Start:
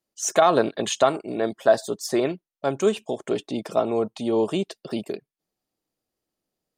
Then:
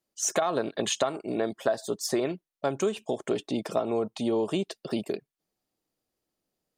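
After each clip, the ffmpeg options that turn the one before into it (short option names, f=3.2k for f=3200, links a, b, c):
-af "acompressor=threshold=-23dB:ratio=6"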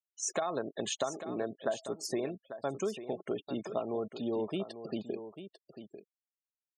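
-af "afftfilt=real='re*gte(hypot(re,im),0.0178)':imag='im*gte(hypot(re,im),0.0178)':win_size=1024:overlap=0.75,aecho=1:1:845:0.266,volume=-7dB"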